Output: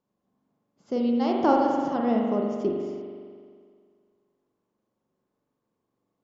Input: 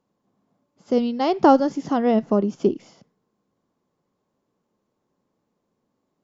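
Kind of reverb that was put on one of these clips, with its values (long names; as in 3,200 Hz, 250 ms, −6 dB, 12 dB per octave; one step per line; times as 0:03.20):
spring reverb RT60 2 s, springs 42 ms, chirp 60 ms, DRR −0.5 dB
level −8 dB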